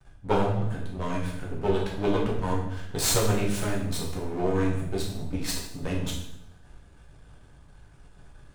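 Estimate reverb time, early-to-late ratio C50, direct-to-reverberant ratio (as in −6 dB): 0.80 s, 4.0 dB, −4.0 dB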